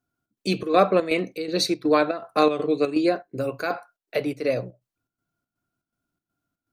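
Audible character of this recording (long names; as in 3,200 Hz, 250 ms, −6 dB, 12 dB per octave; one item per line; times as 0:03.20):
chopped level 2.7 Hz, depth 60%, duty 70%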